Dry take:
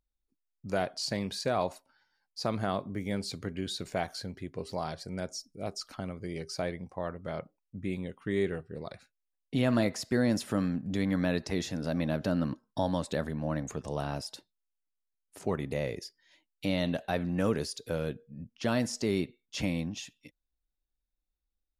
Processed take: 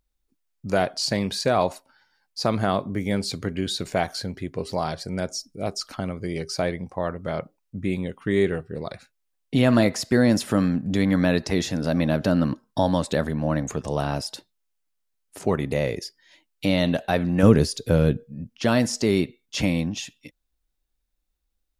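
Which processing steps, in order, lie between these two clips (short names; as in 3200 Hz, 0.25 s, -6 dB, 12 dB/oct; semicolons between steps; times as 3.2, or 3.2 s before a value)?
17.43–18.24 low shelf 280 Hz +11 dB; gain +8.5 dB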